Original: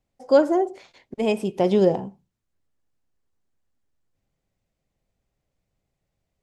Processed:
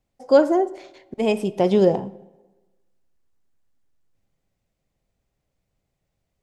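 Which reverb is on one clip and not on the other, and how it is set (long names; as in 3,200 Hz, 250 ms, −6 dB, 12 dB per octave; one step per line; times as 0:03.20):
comb and all-pass reverb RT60 1.2 s, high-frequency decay 0.65×, pre-delay 0 ms, DRR 19 dB
level +1.5 dB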